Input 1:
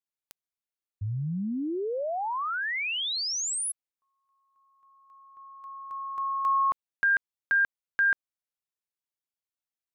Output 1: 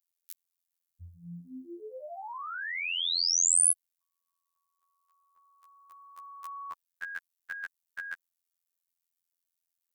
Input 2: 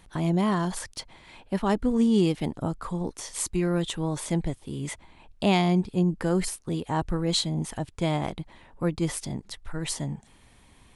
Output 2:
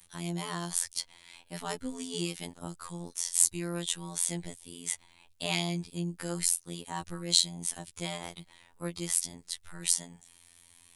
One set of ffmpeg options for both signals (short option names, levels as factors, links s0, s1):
-af "afftfilt=real='hypot(re,im)*cos(PI*b)':imag='0':win_size=2048:overlap=0.75,crystalizer=i=9:c=0,volume=0.299"